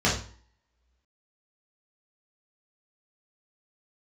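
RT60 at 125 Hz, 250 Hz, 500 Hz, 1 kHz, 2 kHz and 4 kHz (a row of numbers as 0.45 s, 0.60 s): 0.50 s, 0.50 s, 0.45 s, 0.50 s, 0.45 s, 0.40 s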